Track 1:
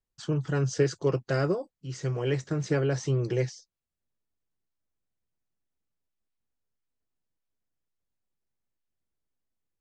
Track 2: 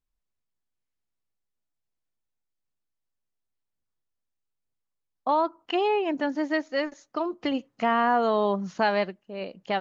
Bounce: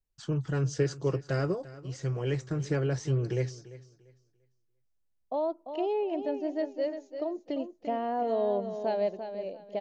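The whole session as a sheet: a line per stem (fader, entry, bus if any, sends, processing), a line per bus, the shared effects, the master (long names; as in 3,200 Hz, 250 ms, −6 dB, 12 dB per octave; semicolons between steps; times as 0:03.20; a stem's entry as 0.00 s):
−4.0 dB, 0.00 s, no send, echo send −17.5 dB, low-shelf EQ 79 Hz +10.5 dB
−13.5 dB, 0.05 s, no send, echo send −9 dB, drawn EQ curve 100 Hz 0 dB, 620 Hz +12 dB, 1,200 Hz −9 dB, 2,400 Hz −3 dB, 4,400 Hz +1 dB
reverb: not used
echo: repeating echo 344 ms, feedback 24%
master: no processing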